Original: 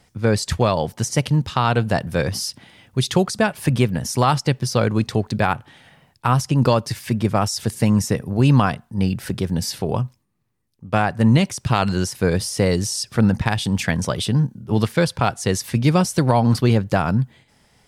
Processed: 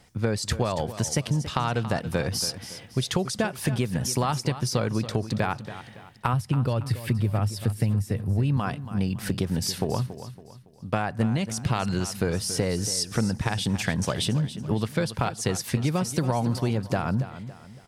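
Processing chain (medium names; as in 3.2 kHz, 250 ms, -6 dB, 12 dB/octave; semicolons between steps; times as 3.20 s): 6.33–8.57 s: fifteen-band graphic EQ 100 Hz +11 dB, 1 kHz -4 dB, 6.3 kHz -10 dB; compression, threshold -22 dBFS, peak gain reduction 14.5 dB; feedback delay 280 ms, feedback 39%, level -13 dB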